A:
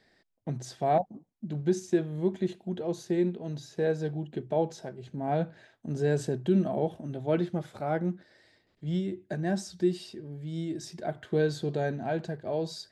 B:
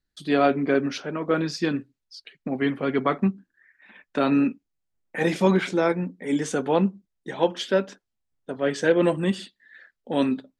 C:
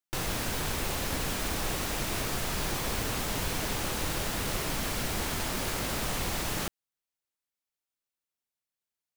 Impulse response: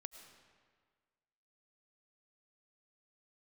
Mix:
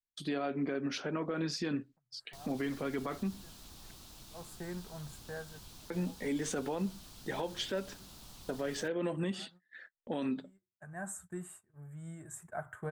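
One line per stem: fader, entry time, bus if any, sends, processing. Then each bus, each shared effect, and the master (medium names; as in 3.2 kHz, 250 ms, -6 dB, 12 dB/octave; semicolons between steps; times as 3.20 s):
-3.5 dB, 1.50 s, bus A, no send, FFT filter 110 Hz 0 dB, 320 Hz -17 dB, 1.3 kHz +10 dB, 5 kHz -30 dB, 7.6 kHz +9 dB; auto duck -22 dB, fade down 0.70 s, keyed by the second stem
-2.5 dB, 0.00 s, muted 3.91–5.90 s, bus A, no send, none
-20.0 dB, 2.20 s, no bus, no send, ten-band graphic EQ 500 Hz -9 dB, 2 kHz -12 dB, 4 kHz +6 dB; vibrato 7.4 Hz 94 cents
bus A: 0.0 dB, gate -52 dBFS, range -21 dB; compression 6:1, threshold -28 dBFS, peak gain reduction 11.5 dB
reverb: none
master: peak limiter -26.5 dBFS, peak gain reduction 11 dB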